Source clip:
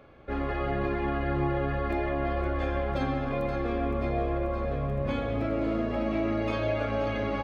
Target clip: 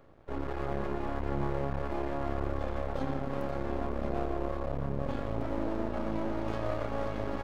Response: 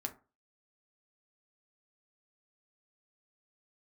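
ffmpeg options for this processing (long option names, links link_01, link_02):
-af "equalizer=frequency=2400:width=1:gain=-11.5,aeval=exprs='max(val(0),0)':channel_layout=same"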